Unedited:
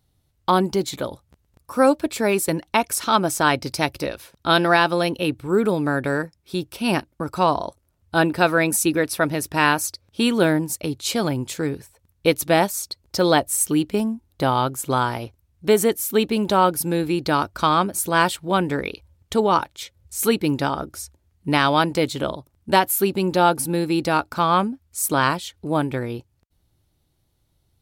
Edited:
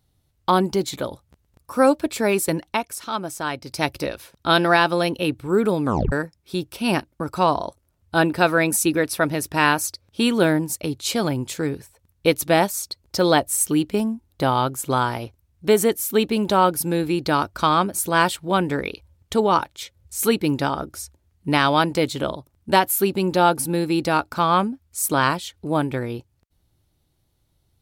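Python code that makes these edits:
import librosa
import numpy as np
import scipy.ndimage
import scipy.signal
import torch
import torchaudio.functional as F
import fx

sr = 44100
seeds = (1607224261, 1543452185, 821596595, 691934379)

y = fx.edit(x, sr, fx.fade_down_up(start_s=2.65, length_s=1.21, db=-8.5, fade_s=0.2),
    fx.tape_stop(start_s=5.85, length_s=0.27), tone=tone)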